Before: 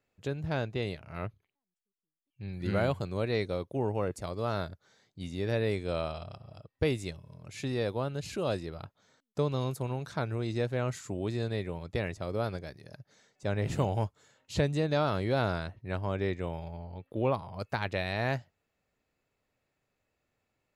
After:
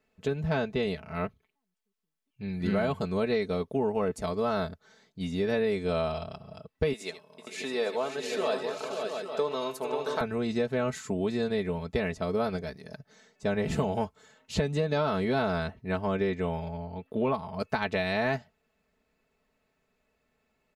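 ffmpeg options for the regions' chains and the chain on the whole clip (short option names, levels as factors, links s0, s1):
-filter_complex "[0:a]asettb=1/sr,asplit=3[s0][s1][s2];[s0]atrim=end=6.934[s3];[s1]atrim=start=6.93:end=10.21,asetpts=PTS-STARTPTS,afade=t=in:d=0.004:c=qsin,afade=t=out:st=3.276:d=0.004:c=qsin,highpass=460,aecho=1:1:76|451|537|675|858:0.211|0.224|0.422|0.376|0.299,atrim=end_sample=144648[s4];[s2]atrim=start=10.206[s5];[s3][s4]acrossfade=d=0.004:c1=hsin:c2=qsin[s6];[s6][s5]acrossfade=d=0.004:c1=qsin:c2=hsin,highshelf=f=4900:g=-6,aecho=1:1:4.6:0.77,acompressor=threshold=0.0398:ratio=6,volume=1.68"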